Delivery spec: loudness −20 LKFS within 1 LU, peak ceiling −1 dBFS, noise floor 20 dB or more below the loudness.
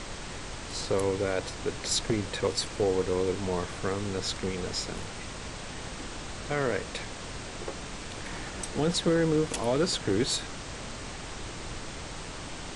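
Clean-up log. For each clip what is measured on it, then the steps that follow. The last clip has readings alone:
background noise floor −40 dBFS; target noise floor −52 dBFS; integrated loudness −31.5 LKFS; sample peak −14.0 dBFS; target loudness −20.0 LKFS
→ noise reduction from a noise print 12 dB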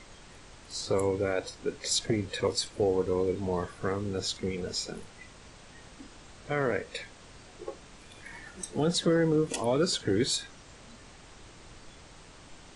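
background noise floor −52 dBFS; integrated loudness −30.0 LKFS; sample peak −15.0 dBFS; target loudness −20.0 LKFS
→ level +10 dB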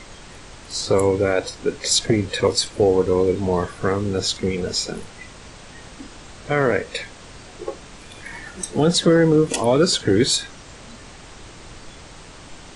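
integrated loudness −20.0 LKFS; sample peak −5.0 dBFS; background noise floor −42 dBFS

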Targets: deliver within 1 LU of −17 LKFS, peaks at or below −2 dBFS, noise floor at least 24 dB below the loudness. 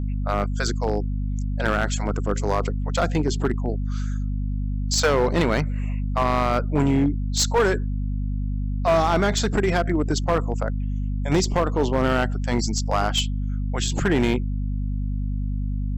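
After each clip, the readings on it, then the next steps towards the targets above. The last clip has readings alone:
share of clipped samples 1.7%; peaks flattened at −14.0 dBFS; mains hum 50 Hz; hum harmonics up to 250 Hz; level of the hum −23 dBFS; integrated loudness −23.5 LKFS; sample peak −14.0 dBFS; target loudness −17.0 LKFS
→ clipped peaks rebuilt −14 dBFS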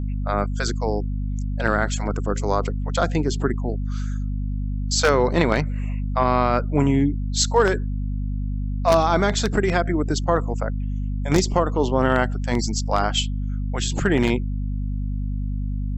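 share of clipped samples 0.0%; mains hum 50 Hz; hum harmonics up to 250 Hz; level of the hum −22 dBFS
→ hum removal 50 Hz, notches 5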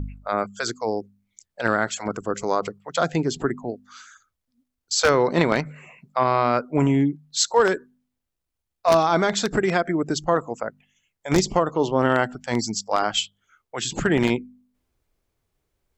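mains hum none found; integrated loudness −23.0 LKFS; sample peak −4.0 dBFS; target loudness −17.0 LKFS
→ level +6 dB
brickwall limiter −2 dBFS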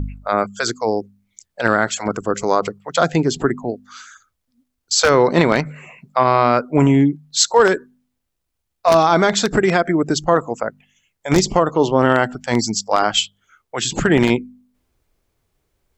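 integrated loudness −17.5 LKFS; sample peak −2.0 dBFS; background noise floor −75 dBFS

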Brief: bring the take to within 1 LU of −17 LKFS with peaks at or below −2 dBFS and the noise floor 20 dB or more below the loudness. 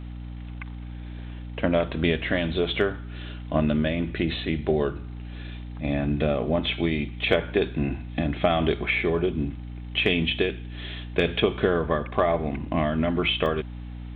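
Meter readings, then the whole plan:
number of dropouts 1; longest dropout 1.3 ms; mains hum 60 Hz; hum harmonics up to 300 Hz; level of the hum −34 dBFS; integrated loudness −25.5 LKFS; sample peak −7.5 dBFS; target loudness −17.0 LKFS
→ repair the gap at 0:13.46, 1.3 ms
mains-hum notches 60/120/180/240/300 Hz
level +8.5 dB
brickwall limiter −2 dBFS

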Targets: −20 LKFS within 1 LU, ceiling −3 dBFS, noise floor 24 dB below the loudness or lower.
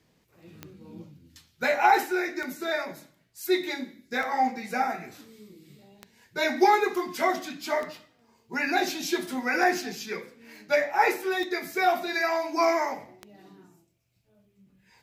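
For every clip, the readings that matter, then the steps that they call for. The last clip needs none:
number of clicks 8; integrated loudness −26.5 LKFS; sample peak −8.5 dBFS; target loudness −20.0 LKFS
→ click removal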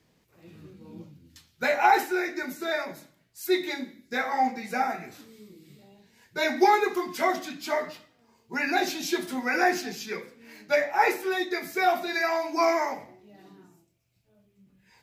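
number of clicks 0; integrated loudness −26.5 LKFS; sample peak −8.5 dBFS; target loudness −20.0 LKFS
→ level +6.5 dB
brickwall limiter −3 dBFS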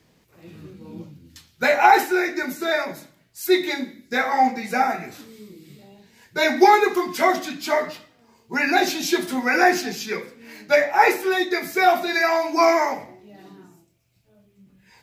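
integrated loudness −20.0 LKFS; sample peak −3.0 dBFS; background noise floor −61 dBFS

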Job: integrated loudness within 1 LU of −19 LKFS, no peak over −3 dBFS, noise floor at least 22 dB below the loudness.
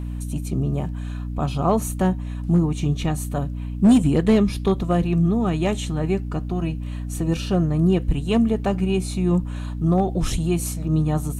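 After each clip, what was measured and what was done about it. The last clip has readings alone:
share of clipped samples 0.7%; peaks flattened at −9.5 dBFS; mains hum 60 Hz; hum harmonics up to 300 Hz; level of the hum −26 dBFS; integrated loudness −22.0 LKFS; sample peak −9.5 dBFS; target loudness −19.0 LKFS
→ clipped peaks rebuilt −9.5 dBFS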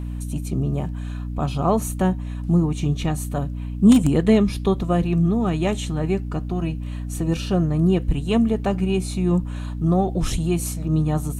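share of clipped samples 0.0%; mains hum 60 Hz; hum harmonics up to 300 Hz; level of the hum −26 dBFS
→ mains-hum notches 60/120/180/240/300 Hz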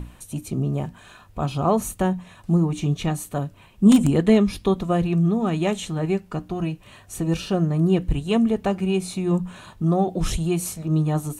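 mains hum none found; integrated loudness −22.5 LKFS; sample peak −4.5 dBFS; target loudness −19.0 LKFS
→ level +3.5 dB
brickwall limiter −3 dBFS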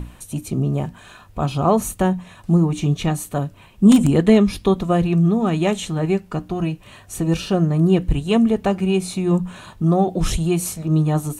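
integrated loudness −19.0 LKFS; sample peak −3.0 dBFS; background noise floor −46 dBFS

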